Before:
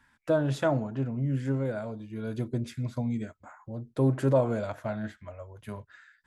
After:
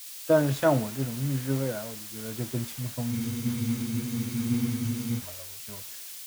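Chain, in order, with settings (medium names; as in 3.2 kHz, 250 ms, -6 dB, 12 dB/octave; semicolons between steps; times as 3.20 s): added noise white -41 dBFS; spectral freeze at 3.14 s, 2.04 s; three bands expanded up and down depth 70%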